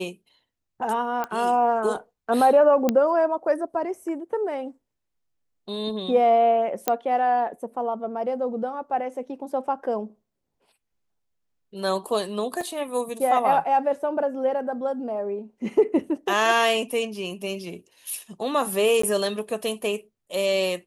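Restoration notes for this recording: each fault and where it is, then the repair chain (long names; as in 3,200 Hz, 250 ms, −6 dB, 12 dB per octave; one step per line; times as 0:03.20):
0:01.24: click −15 dBFS
0:02.89: click −8 dBFS
0:06.88: click −6 dBFS
0:12.61: drop-out 2.2 ms
0:19.02–0:19.03: drop-out 14 ms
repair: click removal
repair the gap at 0:12.61, 2.2 ms
repair the gap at 0:19.02, 14 ms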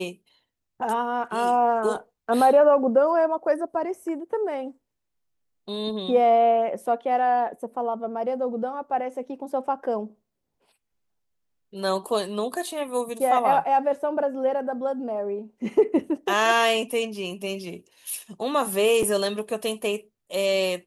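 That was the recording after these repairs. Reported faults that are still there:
none of them is left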